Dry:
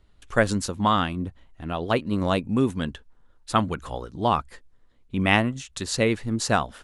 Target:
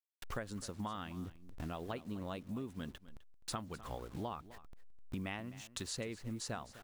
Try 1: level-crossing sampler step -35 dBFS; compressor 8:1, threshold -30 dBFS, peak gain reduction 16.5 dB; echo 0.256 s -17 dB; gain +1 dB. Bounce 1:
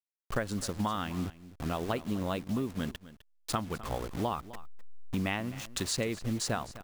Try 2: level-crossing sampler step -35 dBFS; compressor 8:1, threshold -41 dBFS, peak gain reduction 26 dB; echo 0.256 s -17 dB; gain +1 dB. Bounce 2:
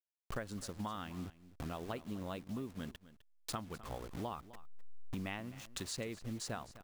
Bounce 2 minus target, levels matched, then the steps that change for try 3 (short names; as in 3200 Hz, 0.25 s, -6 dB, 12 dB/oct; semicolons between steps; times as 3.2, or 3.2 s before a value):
level-crossing sampler: distortion +8 dB
change: level-crossing sampler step -43 dBFS